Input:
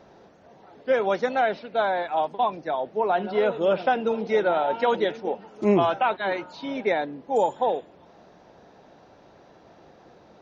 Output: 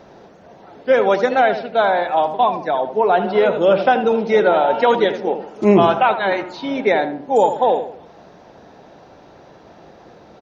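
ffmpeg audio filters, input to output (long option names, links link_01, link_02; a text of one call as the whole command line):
ffmpeg -i in.wav -filter_complex "[0:a]asplit=2[link_01][link_02];[link_02]adelay=79,lowpass=frequency=1500:poles=1,volume=-9dB,asplit=2[link_03][link_04];[link_04]adelay=79,lowpass=frequency=1500:poles=1,volume=0.43,asplit=2[link_05][link_06];[link_06]adelay=79,lowpass=frequency=1500:poles=1,volume=0.43,asplit=2[link_07][link_08];[link_08]adelay=79,lowpass=frequency=1500:poles=1,volume=0.43,asplit=2[link_09][link_10];[link_10]adelay=79,lowpass=frequency=1500:poles=1,volume=0.43[link_11];[link_01][link_03][link_05][link_07][link_09][link_11]amix=inputs=6:normalize=0,volume=7.5dB" out.wav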